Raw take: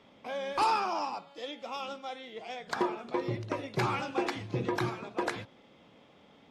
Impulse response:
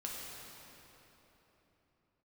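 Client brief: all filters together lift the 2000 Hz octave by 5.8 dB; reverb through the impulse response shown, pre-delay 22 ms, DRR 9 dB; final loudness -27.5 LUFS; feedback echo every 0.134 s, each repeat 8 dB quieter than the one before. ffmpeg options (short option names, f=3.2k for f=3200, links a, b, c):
-filter_complex "[0:a]equalizer=f=2k:t=o:g=7.5,aecho=1:1:134|268|402|536|670:0.398|0.159|0.0637|0.0255|0.0102,asplit=2[a][b];[1:a]atrim=start_sample=2205,adelay=22[c];[b][c]afir=irnorm=-1:irlink=0,volume=-9.5dB[d];[a][d]amix=inputs=2:normalize=0,volume=3dB"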